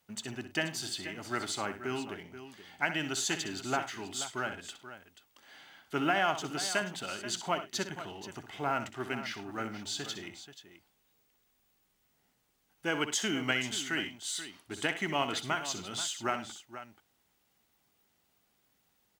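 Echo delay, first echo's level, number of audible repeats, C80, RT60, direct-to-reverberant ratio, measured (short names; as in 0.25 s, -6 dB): 63 ms, -10.5 dB, 3, none, none, none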